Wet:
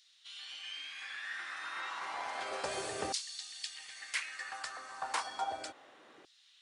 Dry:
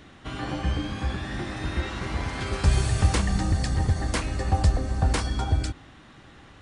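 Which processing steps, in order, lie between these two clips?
auto-filter high-pass saw down 0.32 Hz 390–4,700 Hz
level −8 dB

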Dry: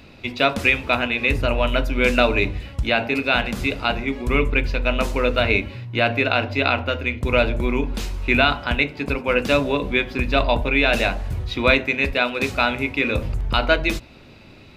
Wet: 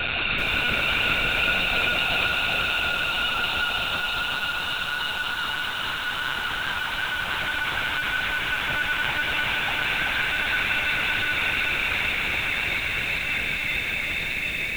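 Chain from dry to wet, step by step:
reverb reduction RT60 0.97 s
high-pass filter 44 Hz 24 dB per octave
reverb reduction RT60 0.6 s
spectral tilt +4.5 dB per octave
brickwall limiter −6 dBFS, peak gain reduction 8.5 dB
downward compressor 5 to 1, threshold −30 dBFS, peak gain reduction 15.5 dB
multi-voice chorus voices 6, 0.28 Hz, delay 11 ms, depth 2.4 ms
extreme stretch with random phases 30×, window 0.50 s, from 0:08.41
tape delay 548 ms, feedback 70%, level −12 dB, low-pass 2,300 Hz
convolution reverb RT60 4.5 s, pre-delay 90 ms, DRR 0 dB
linear-prediction vocoder at 8 kHz pitch kept
feedback echo at a low word length 383 ms, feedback 55%, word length 8 bits, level −4 dB
level +7.5 dB

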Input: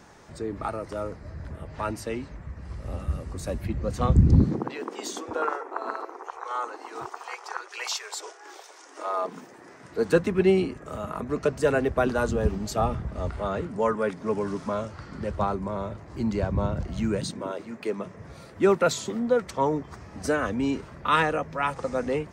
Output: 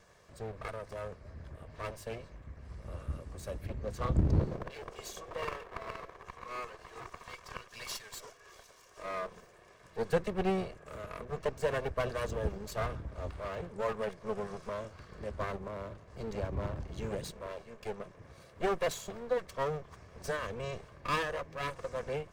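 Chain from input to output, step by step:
lower of the sound and its delayed copy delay 1.8 ms
level −8.5 dB

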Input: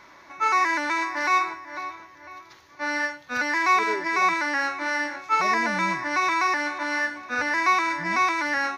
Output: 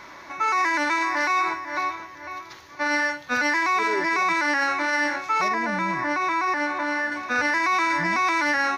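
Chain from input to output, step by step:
brickwall limiter −21.5 dBFS, peak gain reduction 11 dB
0:05.48–0:07.12: high-shelf EQ 2,300 Hz −9 dB
level +7 dB

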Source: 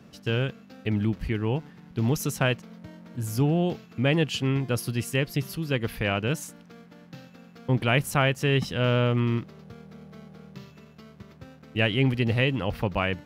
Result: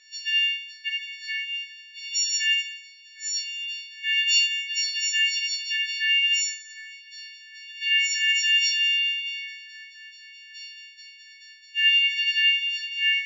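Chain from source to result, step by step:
every partial snapped to a pitch grid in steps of 4 semitones
brickwall limiter −14 dBFS, peak gain reduction 8 dB
echo with a time of its own for lows and highs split 2,200 Hz, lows 758 ms, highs 91 ms, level −14 dB
brick-wall band-pass 1,500–7,300 Hz
rectangular room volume 99 cubic metres, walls mixed, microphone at 1.1 metres

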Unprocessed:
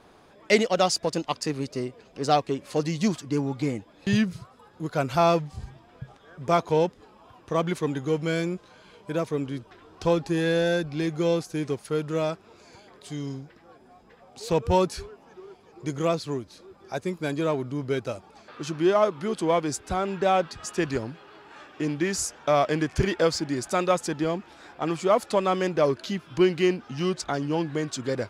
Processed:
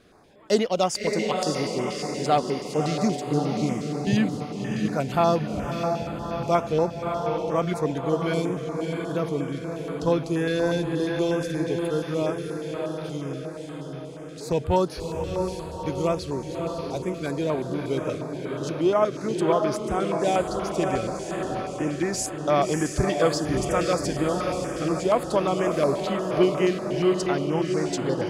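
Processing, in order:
feedback delay with all-pass diffusion 616 ms, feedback 60%, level −4 dB
notch on a step sequencer 8.4 Hz 900–7,700 Hz

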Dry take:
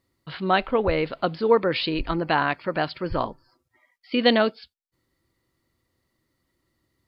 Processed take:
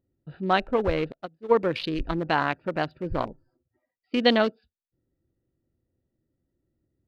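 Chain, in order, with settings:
adaptive Wiener filter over 41 samples
0:01.12–0:01.55: expander for the loud parts 2.5 to 1, over −30 dBFS
level −1 dB

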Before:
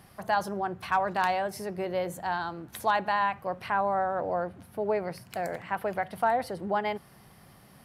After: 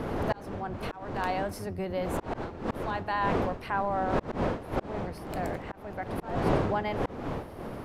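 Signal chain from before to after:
sub-octave generator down 1 octave, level +2 dB
wind on the microphone 590 Hz −24 dBFS
volume swells 449 ms
level −2.5 dB

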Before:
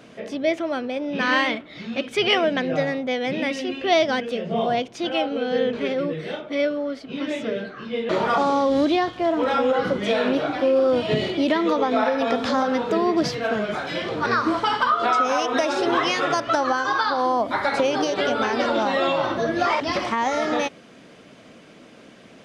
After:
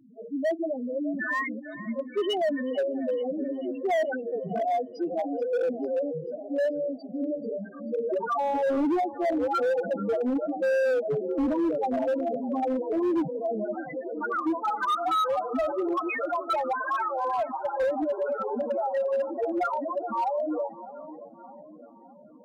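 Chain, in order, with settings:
spectral peaks only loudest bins 2
echo with a time of its own for lows and highs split 920 Hz, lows 610 ms, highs 438 ms, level −15 dB
hard clipping −22 dBFS, distortion −13 dB

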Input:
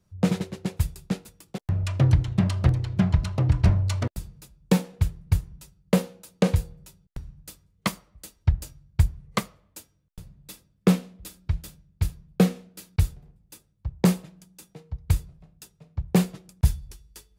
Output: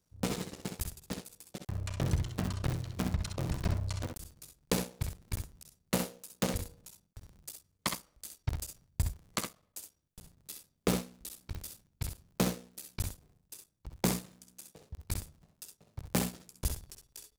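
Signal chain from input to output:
sub-harmonics by changed cycles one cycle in 3, muted
bass and treble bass −5 dB, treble +8 dB
ambience of single reflections 53 ms −15 dB, 65 ms −6.5 dB
level −7 dB

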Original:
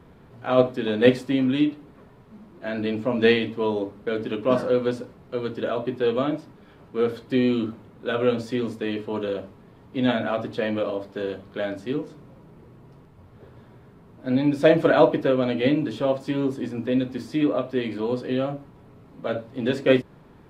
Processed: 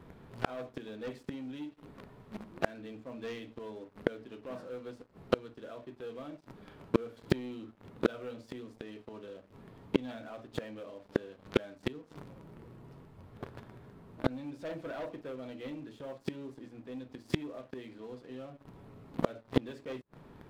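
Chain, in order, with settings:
leveller curve on the samples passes 3
gate with flip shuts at −13 dBFS, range −33 dB
level +2.5 dB

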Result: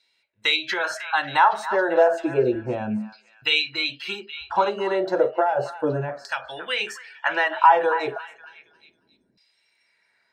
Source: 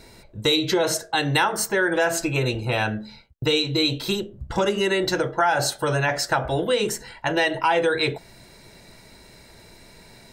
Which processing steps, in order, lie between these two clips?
noise reduction from a noise print of the clip's start 18 dB
auto-filter band-pass saw down 0.32 Hz 230–3,400 Hz
echo through a band-pass that steps 274 ms, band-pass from 1,300 Hz, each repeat 0.7 octaves, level −10 dB
level +8.5 dB

